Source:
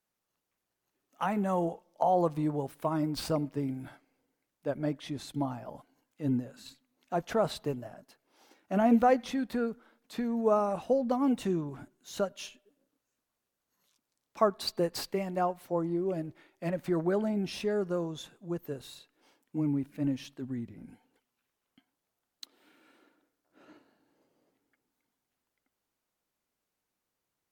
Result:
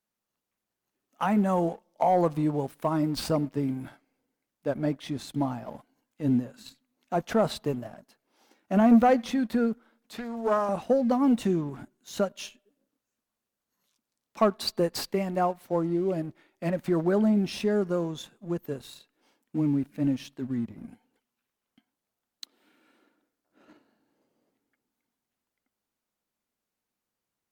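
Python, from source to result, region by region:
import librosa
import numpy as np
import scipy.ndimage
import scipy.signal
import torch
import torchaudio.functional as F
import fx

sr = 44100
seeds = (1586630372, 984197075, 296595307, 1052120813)

y = fx.chain(x, sr, fx.peak_eq(hz=250.0, db=-13.0, octaves=1.3),
    fx.doppler_dist(depth_ms=0.26), at=(10.18, 10.69))
y = fx.peak_eq(y, sr, hz=220.0, db=6.5, octaves=0.25)
y = fx.leveller(y, sr, passes=1)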